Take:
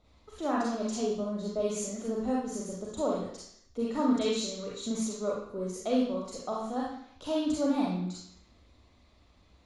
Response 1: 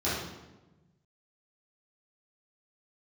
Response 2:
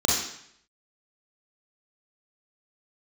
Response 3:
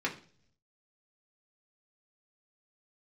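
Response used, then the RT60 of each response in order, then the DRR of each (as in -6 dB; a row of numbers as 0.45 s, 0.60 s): 2; 1.1 s, 0.70 s, 0.50 s; -12.5 dB, -3.5 dB, -2.5 dB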